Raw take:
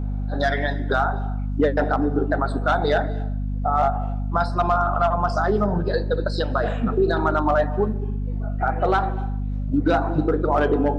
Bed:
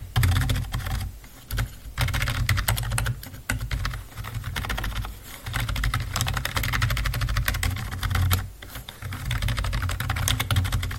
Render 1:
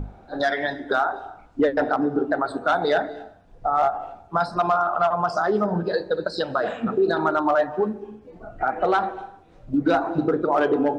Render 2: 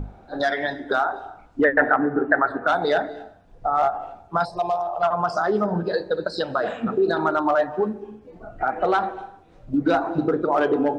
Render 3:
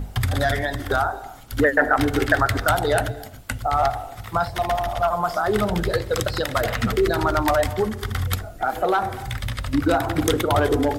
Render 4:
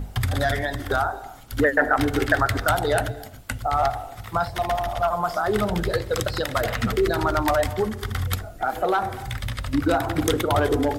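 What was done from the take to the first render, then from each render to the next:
hum notches 50/100/150/200/250 Hz
1.64–2.67 s: resonant low-pass 1.8 kHz; 4.45–5.03 s: static phaser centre 580 Hz, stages 4
add bed -2 dB
trim -1.5 dB

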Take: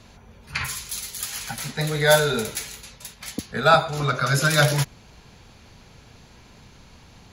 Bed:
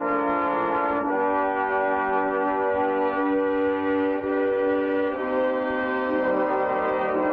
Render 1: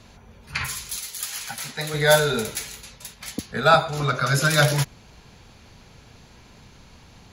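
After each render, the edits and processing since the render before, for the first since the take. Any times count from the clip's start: 0.96–1.94 s: bass shelf 360 Hz -9.5 dB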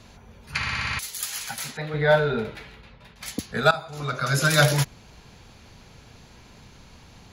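0.57 s: stutter in place 0.06 s, 7 plays; 1.77–3.16 s: distance through air 400 m; 3.71–4.53 s: fade in, from -18.5 dB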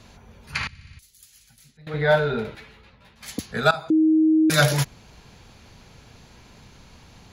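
0.67–1.87 s: amplifier tone stack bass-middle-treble 10-0-1; 2.55–3.29 s: three-phase chorus; 3.90–4.50 s: bleep 315 Hz -14 dBFS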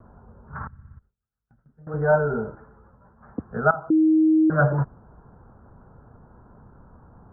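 steep low-pass 1.5 kHz 72 dB/octave; gate with hold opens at -50 dBFS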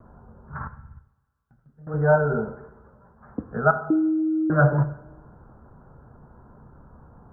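band-passed feedback delay 131 ms, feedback 53%, band-pass 360 Hz, level -19 dB; two-slope reverb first 0.7 s, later 2.4 s, from -25 dB, DRR 9.5 dB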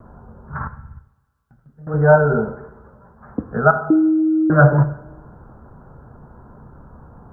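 trim +6.5 dB; peak limiter -1 dBFS, peak gain reduction 2 dB

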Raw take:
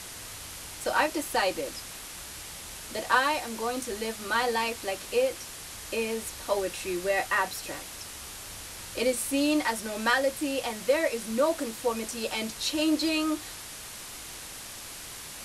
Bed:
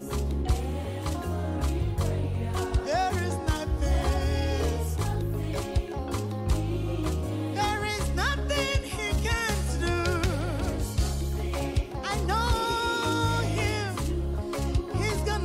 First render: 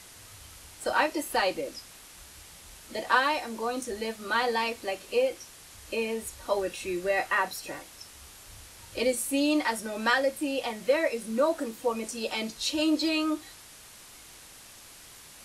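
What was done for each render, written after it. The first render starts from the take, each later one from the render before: noise print and reduce 8 dB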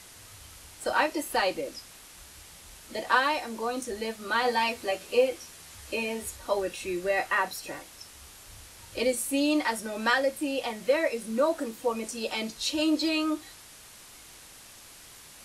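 4.44–6.37 s: doubling 12 ms -3 dB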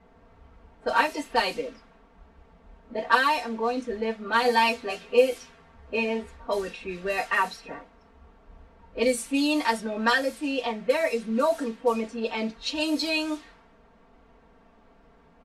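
level-controlled noise filter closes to 720 Hz, open at -22 dBFS; comb 4.4 ms, depth 91%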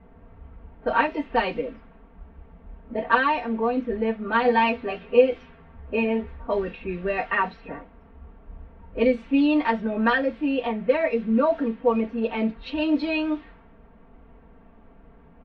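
low-pass 3 kHz 24 dB/octave; bass shelf 320 Hz +9.5 dB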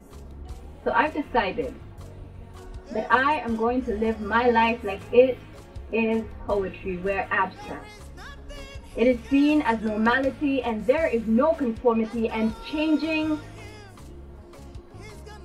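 add bed -15 dB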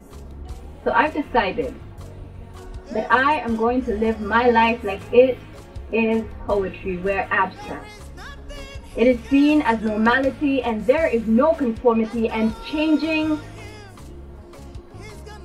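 trim +4 dB; peak limiter -3 dBFS, peak gain reduction 1.5 dB

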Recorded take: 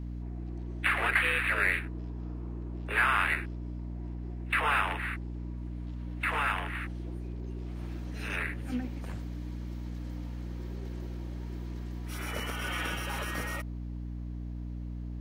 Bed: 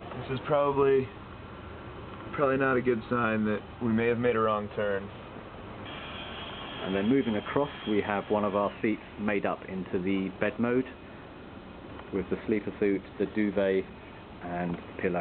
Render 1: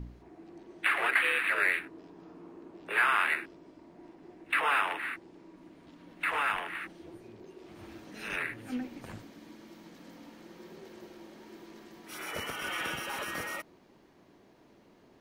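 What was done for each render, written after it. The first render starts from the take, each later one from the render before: de-hum 60 Hz, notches 5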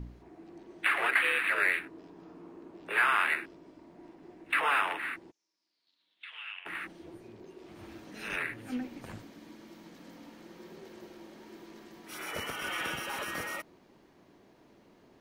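5.30–6.65 s: band-pass filter 6.3 kHz -> 2.6 kHz, Q 6.7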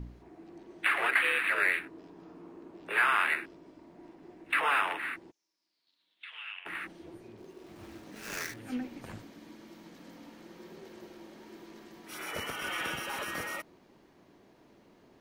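7.37–8.59 s: dead-time distortion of 0.14 ms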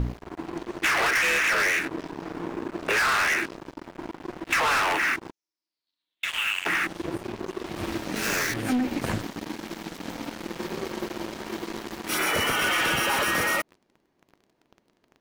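waveshaping leveller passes 5; compression, threshold -22 dBFS, peak gain reduction 6.5 dB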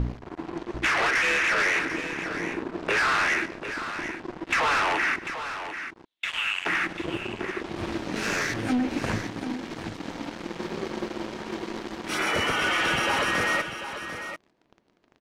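distance through air 62 m; multi-tap echo 142/744 ms -18.5/-10 dB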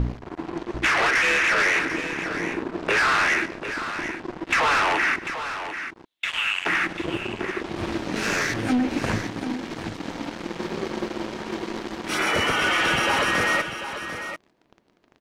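trim +3 dB

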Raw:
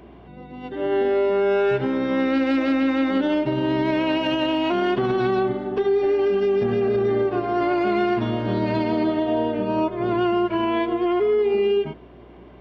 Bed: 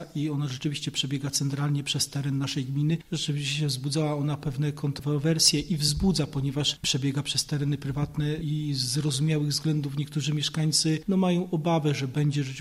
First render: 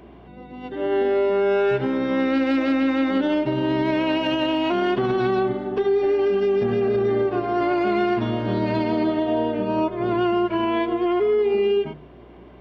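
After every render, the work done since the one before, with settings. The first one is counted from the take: de-hum 50 Hz, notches 3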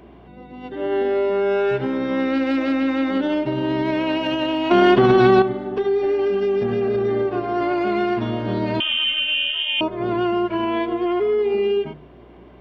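4.71–5.42 s: gain +8 dB; 8.80–9.81 s: frequency inversion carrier 3.4 kHz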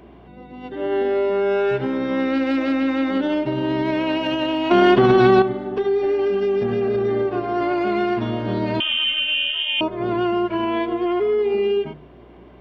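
no audible change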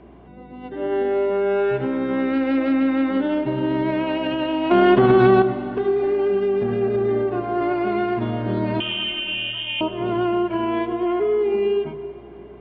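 distance through air 260 m; plate-style reverb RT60 3.9 s, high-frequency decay 0.75×, pre-delay 100 ms, DRR 13.5 dB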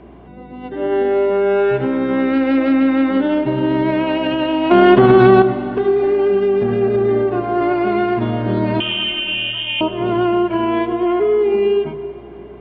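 trim +5 dB; peak limiter -1 dBFS, peak gain reduction 1 dB

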